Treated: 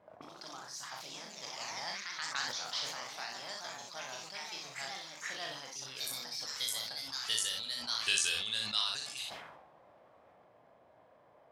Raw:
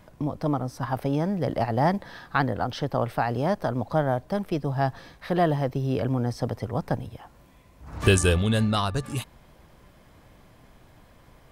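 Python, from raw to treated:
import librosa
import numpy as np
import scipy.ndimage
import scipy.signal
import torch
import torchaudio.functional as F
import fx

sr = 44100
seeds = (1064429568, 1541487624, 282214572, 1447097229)

y = scipy.signal.sosfilt(scipy.signal.butter(2, 80.0, 'highpass', fs=sr, output='sos'), x)
y = fx.peak_eq(y, sr, hz=320.0, db=-7.5, octaves=3.0)
y = fx.auto_wah(y, sr, base_hz=500.0, top_hz=4600.0, q=2.1, full_db=-34.5, direction='up')
y = fx.echo_pitch(y, sr, ms=97, semitones=2, count=3, db_per_echo=-3.0)
y = fx.room_early_taps(y, sr, ms=(37, 62), db=(-6.5, -7.0))
y = fx.sustainer(y, sr, db_per_s=46.0)
y = F.gain(torch.from_numpy(y), 3.0).numpy()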